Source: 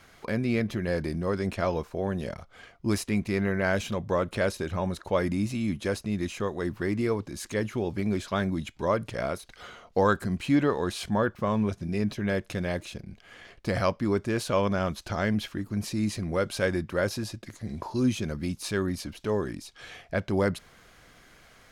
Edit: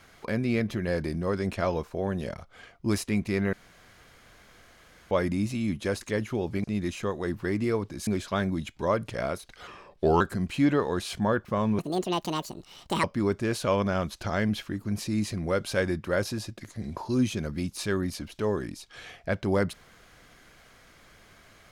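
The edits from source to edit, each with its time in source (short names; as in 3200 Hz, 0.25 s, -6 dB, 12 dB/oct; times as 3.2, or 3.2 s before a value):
3.53–5.11 room tone
7.44–8.07 move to 6.01
9.67–10.11 speed 82%
11.69–13.89 speed 176%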